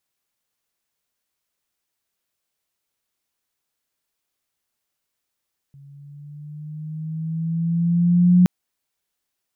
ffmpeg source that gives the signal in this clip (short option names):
-f lavfi -i "aevalsrc='pow(10,(-9+33.5*(t/2.72-1))/20)*sin(2*PI*139*2.72/(4.5*log(2)/12)*(exp(4.5*log(2)/12*t/2.72)-1))':d=2.72:s=44100"